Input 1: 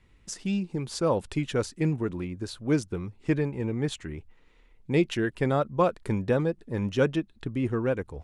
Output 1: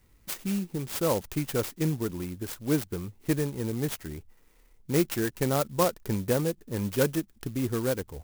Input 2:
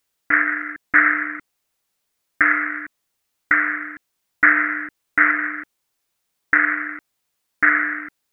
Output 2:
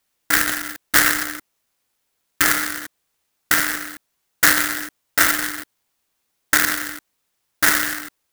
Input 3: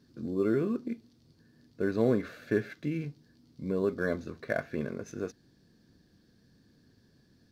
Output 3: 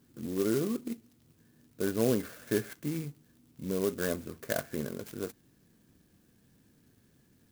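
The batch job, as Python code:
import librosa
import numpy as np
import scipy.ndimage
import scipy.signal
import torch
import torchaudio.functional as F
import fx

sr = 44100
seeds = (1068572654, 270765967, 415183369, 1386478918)

y = fx.high_shelf(x, sr, hz=4000.0, db=7.0)
y = fx.clock_jitter(y, sr, seeds[0], jitter_ms=0.081)
y = F.gain(torch.from_numpy(y), -1.5).numpy()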